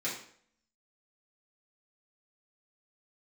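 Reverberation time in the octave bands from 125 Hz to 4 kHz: 0.55 s, 0.65 s, 0.60 s, 0.55 s, 0.55 s, 0.50 s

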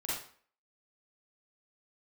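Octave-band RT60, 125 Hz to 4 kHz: 0.40 s, 0.45 s, 0.50 s, 0.50 s, 0.45 s, 0.40 s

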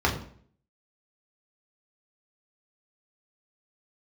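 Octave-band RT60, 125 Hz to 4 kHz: 0.65 s, 0.65 s, 0.55 s, 0.50 s, 0.50 s, 0.45 s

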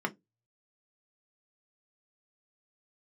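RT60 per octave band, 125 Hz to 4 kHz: 0.35 s, 0.20 s, 0.20 s, 0.15 s, 0.10 s, 0.10 s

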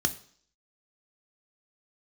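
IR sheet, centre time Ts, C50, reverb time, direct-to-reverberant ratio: 5 ms, 16.5 dB, 0.55 s, 8.0 dB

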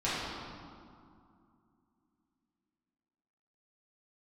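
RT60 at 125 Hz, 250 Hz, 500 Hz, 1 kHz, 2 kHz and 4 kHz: 2.8 s, 3.5 s, 2.4 s, 2.5 s, 1.7 s, 1.3 s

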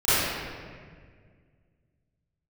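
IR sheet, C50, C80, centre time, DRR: -8.5 dB, -3.0 dB, 157 ms, -19.0 dB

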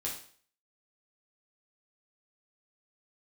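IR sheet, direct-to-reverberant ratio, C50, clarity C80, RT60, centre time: -4.0 dB, 5.5 dB, 10.0 dB, 0.50 s, 29 ms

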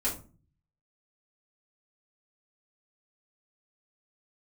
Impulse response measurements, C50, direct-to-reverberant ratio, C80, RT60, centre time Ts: 9.0 dB, -7.5 dB, 15.0 dB, 0.35 s, 23 ms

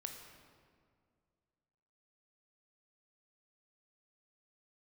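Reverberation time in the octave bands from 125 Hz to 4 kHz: 2.5 s, 2.4 s, 2.3 s, 2.0 s, 1.6 s, 1.3 s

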